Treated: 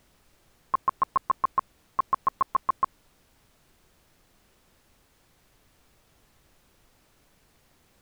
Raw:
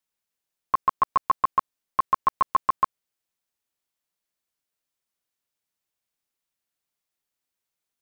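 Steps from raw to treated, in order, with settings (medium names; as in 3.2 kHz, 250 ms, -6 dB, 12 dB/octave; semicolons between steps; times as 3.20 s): low-pass 1.9 kHz; added noise pink -60 dBFS; trim -3 dB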